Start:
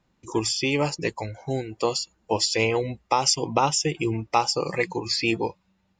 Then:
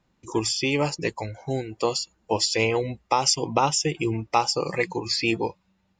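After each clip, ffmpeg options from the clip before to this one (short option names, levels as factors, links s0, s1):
-af anull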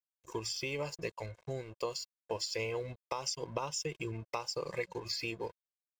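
-af "aeval=exprs='sgn(val(0))*max(abs(val(0))-0.0075,0)':c=same,acompressor=threshold=0.0447:ratio=3,aecho=1:1:1.9:0.52,volume=0.376"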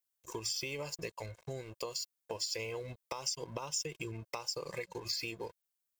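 -af "acompressor=threshold=0.01:ratio=2.5,crystalizer=i=1.5:c=0,volume=1.12"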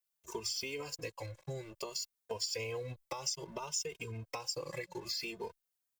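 -filter_complex "[0:a]asplit=2[s0][s1];[s1]adelay=3,afreqshift=0.6[s2];[s0][s2]amix=inputs=2:normalize=1,volume=1.33"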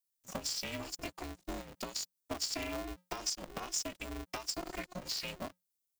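-filter_complex "[0:a]acrossover=split=360|3500[s0][s1][s2];[s1]aeval=exprs='sgn(val(0))*max(abs(val(0))-0.00141,0)':c=same[s3];[s0][s3][s2]amix=inputs=3:normalize=0,aeval=exprs='val(0)*sgn(sin(2*PI*180*n/s))':c=same,volume=1.12"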